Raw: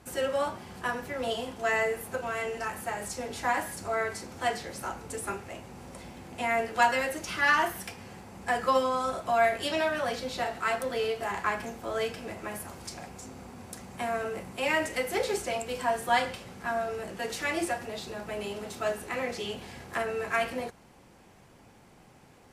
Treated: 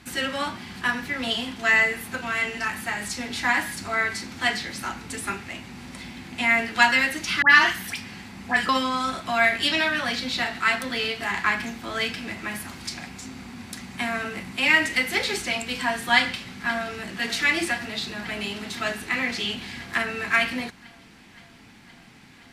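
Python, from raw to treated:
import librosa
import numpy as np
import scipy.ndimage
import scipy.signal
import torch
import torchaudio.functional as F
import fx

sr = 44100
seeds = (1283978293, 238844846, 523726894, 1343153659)

y = fx.dispersion(x, sr, late='highs', ms=85.0, hz=1600.0, at=(7.42, 8.69))
y = fx.echo_throw(y, sr, start_s=16.17, length_s=1.04, ms=520, feedback_pct=80, wet_db=-14.0)
y = fx.graphic_eq(y, sr, hz=(250, 500, 2000, 4000), db=(8, -10, 8, 9))
y = F.gain(torch.from_numpy(y), 2.5).numpy()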